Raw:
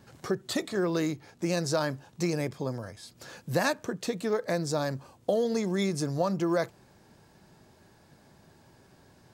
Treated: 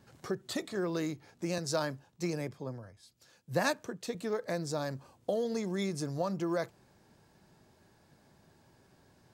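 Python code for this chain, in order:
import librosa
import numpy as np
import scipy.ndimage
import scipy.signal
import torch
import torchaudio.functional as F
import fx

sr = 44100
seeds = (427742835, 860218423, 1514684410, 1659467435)

y = fx.band_widen(x, sr, depth_pct=70, at=(1.58, 4.15))
y = y * librosa.db_to_amplitude(-5.5)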